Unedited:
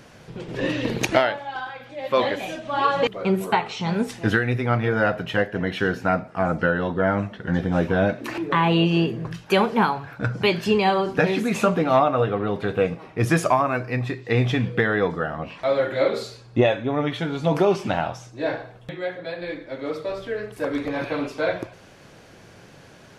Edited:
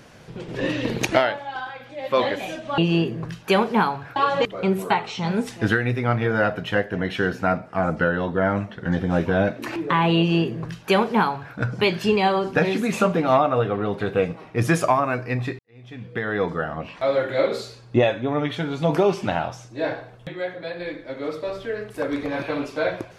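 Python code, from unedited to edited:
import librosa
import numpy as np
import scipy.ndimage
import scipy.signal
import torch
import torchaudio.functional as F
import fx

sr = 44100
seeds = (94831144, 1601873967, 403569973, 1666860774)

y = fx.edit(x, sr, fx.duplicate(start_s=8.8, length_s=1.38, to_s=2.78),
    fx.fade_in_span(start_s=14.21, length_s=0.89, curve='qua'), tone=tone)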